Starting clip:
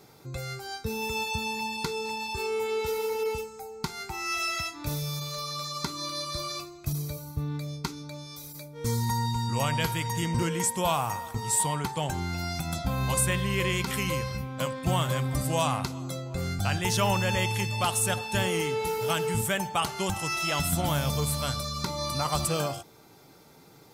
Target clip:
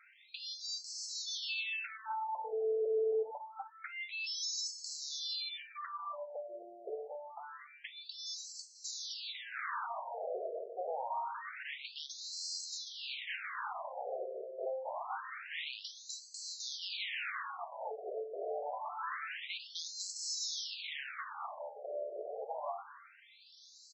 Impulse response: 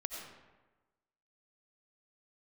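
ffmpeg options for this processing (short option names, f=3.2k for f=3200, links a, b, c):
-filter_complex "[0:a]highshelf=f=6.3k:g=5.5,acrossover=split=490[a][b];[b]acompressor=threshold=-43dB:ratio=1.5[c];[a][c]amix=inputs=2:normalize=0,aeval=exprs='0.0266*(abs(mod(val(0)/0.0266+3,4)-2)-1)':c=same,asplit=2[d][e];[e]aecho=0:1:266|532|798:0.211|0.0634|0.019[f];[d][f]amix=inputs=2:normalize=0,afftfilt=real='re*between(b*sr/1024,500*pow(5800/500,0.5+0.5*sin(2*PI*0.26*pts/sr))/1.41,500*pow(5800/500,0.5+0.5*sin(2*PI*0.26*pts/sr))*1.41)':imag='im*between(b*sr/1024,500*pow(5800/500,0.5+0.5*sin(2*PI*0.26*pts/sr))/1.41,500*pow(5800/500,0.5+0.5*sin(2*PI*0.26*pts/sr))*1.41)':win_size=1024:overlap=0.75,volume=4dB"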